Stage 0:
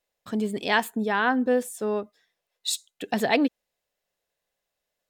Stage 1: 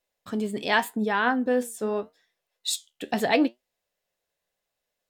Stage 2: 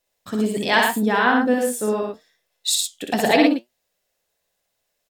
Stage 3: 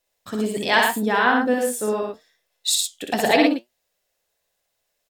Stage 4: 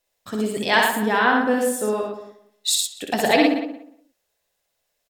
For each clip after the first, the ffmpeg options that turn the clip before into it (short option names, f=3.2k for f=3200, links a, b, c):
-af "flanger=delay=7.5:depth=6.7:regen=68:speed=0.83:shape=triangular,volume=4dB"
-filter_complex "[0:a]bass=f=250:g=1,treble=f=4k:g=4,asplit=2[a][b];[b]aecho=0:1:61.22|110.8:0.708|0.562[c];[a][c]amix=inputs=2:normalize=0,volume=3.5dB"
-af "equalizer=f=190:t=o:w=1.5:g=-3.5"
-filter_complex "[0:a]asplit=2[a][b];[b]adelay=179,lowpass=f=1.8k:p=1,volume=-11dB,asplit=2[c][d];[d]adelay=179,lowpass=f=1.8k:p=1,volume=0.19,asplit=2[e][f];[f]adelay=179,lowpass=f=1.8k:p=1,volume=0.19[g];[a][c][e][g]amix=inputs=4:normalize=0"